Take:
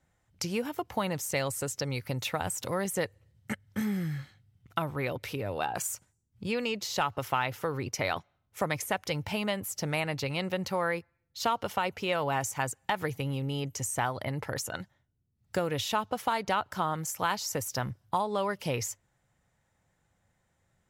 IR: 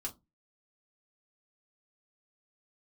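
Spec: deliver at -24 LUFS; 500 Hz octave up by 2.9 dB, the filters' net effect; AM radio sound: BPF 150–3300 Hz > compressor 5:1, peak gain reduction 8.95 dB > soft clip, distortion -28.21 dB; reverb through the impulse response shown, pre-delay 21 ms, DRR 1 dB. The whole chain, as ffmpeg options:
-filter_complex "[0:a]equalizer=f=500:t=o:g=3.5,asplit=2[a][b];[1:a]atrim=start_sample=2205,adelay=21[c];[b][c]afir=irnorm=-1:irlink=0,volume=0dB[d];[a][d]amix=inputs=2:normalize=0,highpass=150,lowpass=3.3k,acompressor=threshold=-29dB:ratio=5,asoftclip=threshold=-16.5dB,volume=11dB"

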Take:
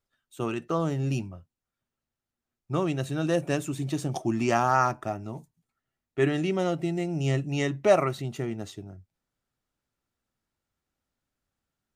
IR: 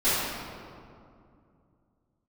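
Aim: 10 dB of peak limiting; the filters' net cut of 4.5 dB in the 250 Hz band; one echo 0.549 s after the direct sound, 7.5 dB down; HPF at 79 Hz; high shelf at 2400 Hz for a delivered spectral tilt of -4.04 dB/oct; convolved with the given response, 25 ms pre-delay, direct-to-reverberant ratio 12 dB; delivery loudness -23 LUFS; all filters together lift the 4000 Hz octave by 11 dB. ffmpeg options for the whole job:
-filter_complex "[0:a]highpass=79,equalizer=f=250:t=o:g=-7,highshelf=f=2.4k:g=7,equalizer=f=4k:t=o:g=8.5,alimiter=limit=-15dB:level=0:latency=1,aecho=1:1:549:0.422,asplit=2[a][b];[1:a]atrim=start_sample=2205,adelay=25[c];[b][c]afir=irnorm=-1:irlink=0,volume=-27.5dB[d];[a][d]amix=inputs=2:normalize=0,volume=6.5dB"

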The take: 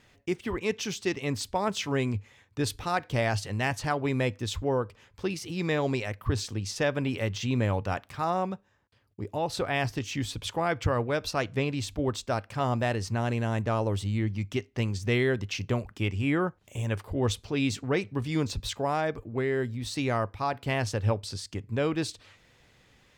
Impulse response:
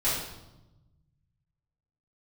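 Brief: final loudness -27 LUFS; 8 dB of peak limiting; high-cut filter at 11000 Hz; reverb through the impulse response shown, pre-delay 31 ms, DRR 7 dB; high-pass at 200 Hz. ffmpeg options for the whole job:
-filter_complex "[0:a]highpass=200,lowpass=11k,alimiter=limit=-20dB:level=0:latency=1,asplit=2[a][b];[1:a]atrim=start_sample=2205,adelay=31[c];[b][c]afir=irnorm=-1:irlink=0,volume=-17.5dB[d];[a][d]amix=inputs=2:normalize=0,volume=5.5dB"

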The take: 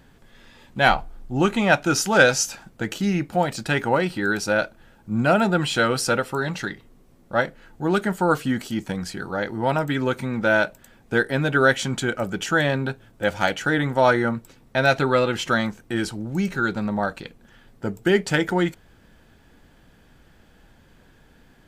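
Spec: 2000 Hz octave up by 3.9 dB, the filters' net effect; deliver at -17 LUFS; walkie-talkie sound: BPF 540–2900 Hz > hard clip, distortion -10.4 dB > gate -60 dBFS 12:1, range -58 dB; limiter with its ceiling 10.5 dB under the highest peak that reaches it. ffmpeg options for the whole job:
-af "equalizer=f=2k:t=o:g=6.5,alimiter=limit=-9.5dB:level=0:latency=1,highpass=540,lowpass=2.9k,asoftclip=type=hard:threshold=-19.5dB,agate=range=-58dB:threshold=-60dB:ratio=12,volume=10dB"

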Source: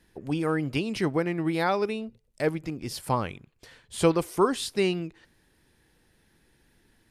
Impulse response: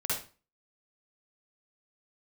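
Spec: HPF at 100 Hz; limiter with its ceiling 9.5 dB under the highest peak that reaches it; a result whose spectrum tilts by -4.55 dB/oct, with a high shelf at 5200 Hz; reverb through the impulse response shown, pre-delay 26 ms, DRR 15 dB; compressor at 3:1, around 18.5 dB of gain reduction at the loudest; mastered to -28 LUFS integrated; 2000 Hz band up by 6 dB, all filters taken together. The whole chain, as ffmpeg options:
-filter_complex "[0:a]highpass=100,equalizer=f=2k:t=o:g=8.5,highshelf=f=5.2k:g=-6,acompressor=threshold=-42dB:ratio=3,alimiter=level_in=9.5dB:limit=-24dB:level=0:latency=1,volume=-9.5dB,asplit=2[a][b];[1:a]atrim=start_sample=2205,adelay=26[c];[b][c]afir=irnorm=-1:irlink=0,volume=-21.5dB[d];[a][d]amix=inputs=2:normalize=0,volume=16dB"

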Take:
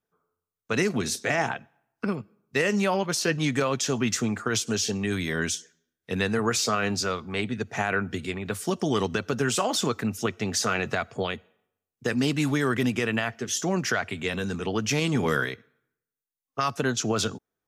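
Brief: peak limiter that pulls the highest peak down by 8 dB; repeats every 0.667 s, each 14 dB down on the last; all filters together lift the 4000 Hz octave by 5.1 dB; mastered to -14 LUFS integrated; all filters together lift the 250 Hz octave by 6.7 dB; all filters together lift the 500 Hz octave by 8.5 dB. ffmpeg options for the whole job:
-af "equalizer=f=250:t=o:g=6,equalizer=f=500:t=o:g=8.5,equalizer=f=4k:t=o:g=6.5,alimiter=limit=-13.5dB:level=0:latency=1,aecho=1:1:667|1334:0.2|0.0399,volume=10dB"

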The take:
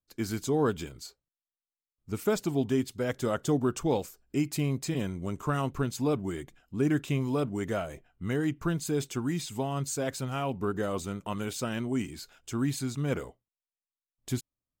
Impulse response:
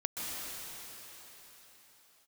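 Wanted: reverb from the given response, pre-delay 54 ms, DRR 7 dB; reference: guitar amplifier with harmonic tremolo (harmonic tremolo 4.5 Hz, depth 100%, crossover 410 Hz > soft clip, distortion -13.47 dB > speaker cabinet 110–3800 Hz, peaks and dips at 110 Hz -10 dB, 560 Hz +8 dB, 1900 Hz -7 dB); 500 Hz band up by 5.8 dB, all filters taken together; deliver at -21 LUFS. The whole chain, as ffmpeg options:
-filter_complex "[0:a]equalizer=f=500:t=o:g=3.5,asplit=2[a][b];[1:a]atrim=start_sample=2205,adelay=54[c];[b][c]afir=irnorm=-1:irlink=0,volume=-12dB[d];[a][d]amix=inputs=2:normalize=0,acrossover=split=410[e][f];[e]aeval=exprs='val(0)*(1-1/2+1/2*cos(2*PI*4.5*n/s))':c=same[g];[f]aeval=exprs='val(0)*(1-1/2-1/2*cos(2*PI*4.5*n/s))':c=same[h];[g][h]amix=inputs=2:normalize=0,asoftclip=threshold=-27dB,highpass=110,equalizer=f=110:t=q:w=4:g=-10,equalizer=f=560:t=q:w=4:g=8,equalizer=f=1.9k:t=q:w=4:g=-7,lowpass=f=3.8k:w=0.5412,lowpass=f=3.8k:w=1.3066,volume=15.5dB"

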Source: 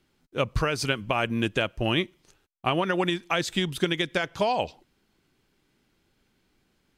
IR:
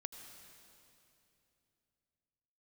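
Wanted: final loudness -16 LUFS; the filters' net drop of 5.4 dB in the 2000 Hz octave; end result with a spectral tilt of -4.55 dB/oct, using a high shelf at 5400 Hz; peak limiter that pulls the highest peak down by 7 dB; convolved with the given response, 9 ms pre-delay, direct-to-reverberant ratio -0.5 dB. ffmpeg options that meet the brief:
-filter_complex "[0:a]equalizer=f=2k:t=o:g=-6.5,highshelf=f=5.4k:g=-6,alimiter=limit=-17.5dB:level=0:latency=1,asplit=2[a][b];[1:a]atrim=start_sample=2205,adelay=9[c];[b][c]afir=irnorm=-1:irlink=0,volume=4dB[d];[a][d]amix=inputs=2:normalize=0,volume=11dB"

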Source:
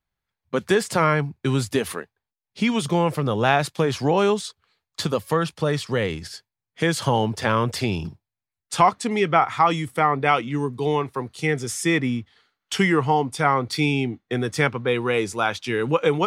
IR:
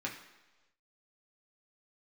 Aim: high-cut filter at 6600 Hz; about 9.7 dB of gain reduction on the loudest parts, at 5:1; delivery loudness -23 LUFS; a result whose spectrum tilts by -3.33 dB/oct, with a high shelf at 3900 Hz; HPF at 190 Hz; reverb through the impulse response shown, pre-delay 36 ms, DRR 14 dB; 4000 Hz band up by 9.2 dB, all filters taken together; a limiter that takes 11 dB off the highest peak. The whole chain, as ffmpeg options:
-filter_complex "[0:a]highpass=190,lowpass=6.6k,highshelf=f=3.9k:g=6.5,equalizer=f=4k:t=o:g=8.5,acompressor=threshold=-22dB:ratio=5,alimiter=limit=-20dB:level=0:latency=1,asplit=2[a][b];[1:a]atrim=start_sample=2205,adelay=36[c];[b][c]afir=irnorm=-1:irlink=0,volume=-17dB[d];[a][d]amix=inputs=2:normalize=0,volume=7dB"

